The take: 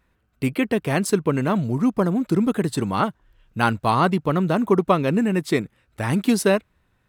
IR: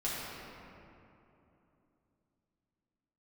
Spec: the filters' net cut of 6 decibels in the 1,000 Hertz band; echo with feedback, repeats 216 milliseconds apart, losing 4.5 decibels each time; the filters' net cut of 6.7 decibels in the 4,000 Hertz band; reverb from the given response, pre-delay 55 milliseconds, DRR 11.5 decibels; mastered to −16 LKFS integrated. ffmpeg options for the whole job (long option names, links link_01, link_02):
-filter_complex "[0:a]equalizer=frequency=1000:width_type=o:gain=-7.5,equalizer=frequency=4000:width_type=o:gain=-8.5,aecho=1:1:216|432|648|864|1080|1296|1512|1728|1944:0.596|0.357|0.214|0.129|0.0772|0.0463|0.0278|0.0167|0.01,asplit=2[link_01][link_02];[1:a]atrim=start_sample=2205,adelay=55[link_03];[link_02][link_03]afir=irnorm=-1:irlink=0,volume=-17.5dB[link_04];[link_01][link_04]amix=inputs=2:normalize=0,volume=5dB"